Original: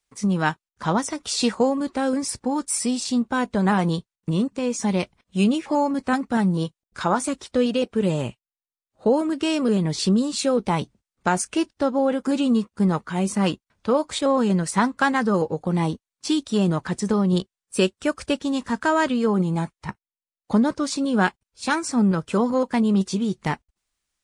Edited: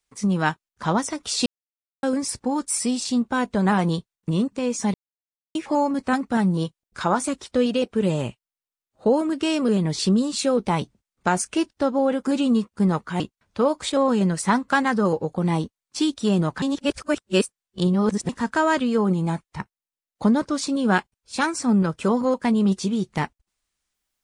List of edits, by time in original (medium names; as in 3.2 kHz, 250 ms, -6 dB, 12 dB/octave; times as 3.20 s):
1.46–2.03 s: mute
4.94–5.55 s: mute
13.20–13.49 s: delete
16.91–18.58 s: reverse